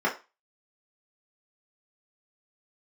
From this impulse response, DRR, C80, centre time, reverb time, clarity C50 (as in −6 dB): −5.5 dB, 18.0 dB, 19 ms, 0.30 s, 12.0 dB